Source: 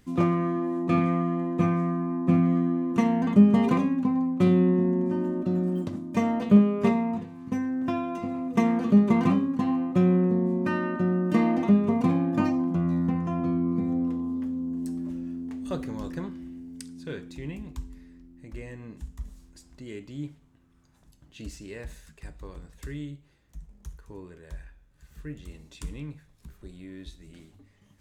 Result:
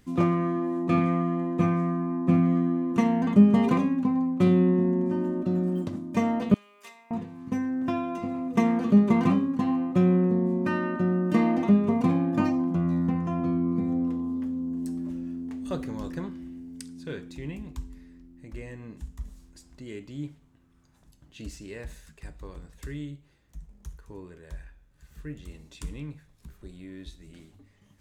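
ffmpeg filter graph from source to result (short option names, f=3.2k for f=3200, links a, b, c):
-filter_complex "[0:a]asettb=1/sr,asplit=3[a][b][c];[a]atrim=end=6.544[d];[b]atrim=start=6.54:end=7.11,asetpts=PTS-STARTPTS,afade=t=in:d=0.004:c=qsin,afade=t=out:st=0.566:d=0.004:c=qsin,highpass=f=890:p=1,aderivative,acompressor=mode=upward:threshold=-54dB:ratio=2.5:attack=3.2:release=140:knee=2.83:detection=peak[e];[c]atrim=start=7.106[f];[d][e]acrossfade=d=0.004:c1=hsin:c2=qsin[g];[g][f]acrossfade=d=0.004:c1=qsin:c2=hsin"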